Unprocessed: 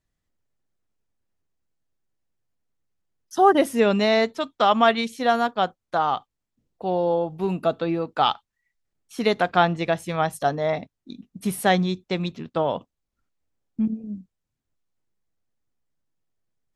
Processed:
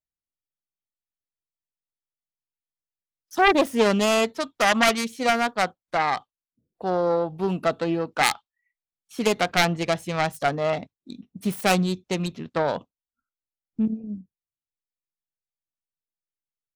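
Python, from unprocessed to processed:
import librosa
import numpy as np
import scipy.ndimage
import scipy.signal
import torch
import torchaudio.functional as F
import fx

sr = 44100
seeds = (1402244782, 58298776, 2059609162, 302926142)

y = fx.self_delay(x, sr, depth_ms=0.43)
y = fx.noise_reduce_blind(y, sr, reduce_db=22)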